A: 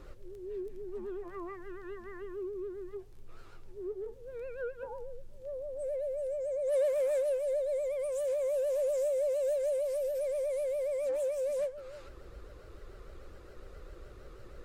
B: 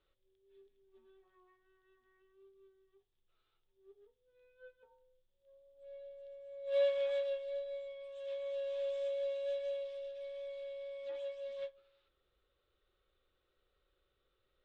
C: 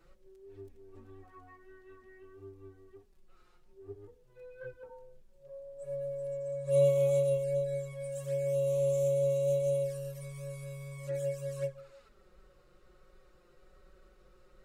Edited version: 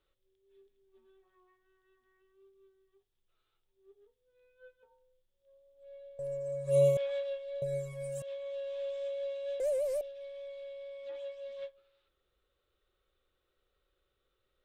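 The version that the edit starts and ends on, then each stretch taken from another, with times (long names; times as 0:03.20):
B
0:06.19–0:06.97: punch in from C
0:07.62–0:08.22: punch in from C
0:09.60–0:10.01: punch in from A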